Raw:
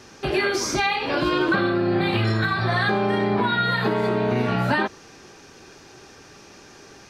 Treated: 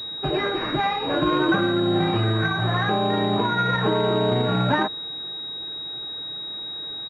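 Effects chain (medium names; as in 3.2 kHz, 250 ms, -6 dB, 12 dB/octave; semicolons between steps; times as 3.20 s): comb 6.5 ms, depth 43%; class-D stage that switches slowly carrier 3.8 kHz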